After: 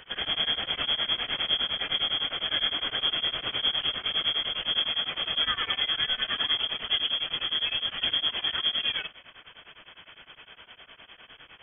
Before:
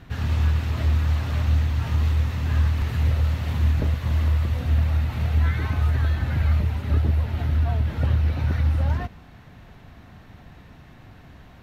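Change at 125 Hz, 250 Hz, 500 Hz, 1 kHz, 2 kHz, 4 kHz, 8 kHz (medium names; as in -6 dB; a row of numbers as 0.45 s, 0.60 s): -31.5 dB, -14.0 dB, -4.5 dB, -1.5 dB, +4.0 dB, +20.0 dB, no reading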